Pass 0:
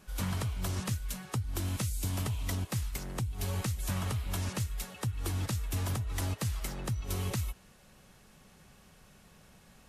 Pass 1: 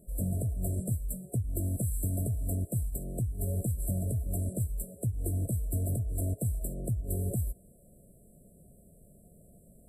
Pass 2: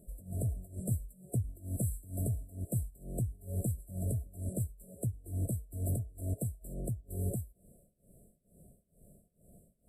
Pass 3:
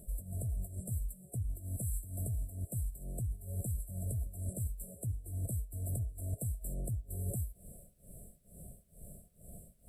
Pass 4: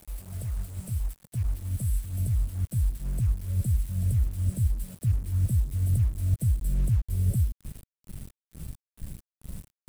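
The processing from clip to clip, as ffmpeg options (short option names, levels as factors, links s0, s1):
-af "afftfilt=real='re*(1-between(b*sr/4096,720,7500))':imag='im*(1-between(b*sr/4096,720,7500))':win_size=4096:overlap=0.75,volume=1.33"
-af "tremolo=f=2.2:d=0.93,volume=0.891"
-af "equalizer=f=320:w=0.55:g=-9,areverse,acompressor=threshold=0.00562:ratio=12,areverse,volume=3.76"
-af "acrusher=bits=7:mix=0:aa=0.000001,asubboost=boost=5:cutoff=240"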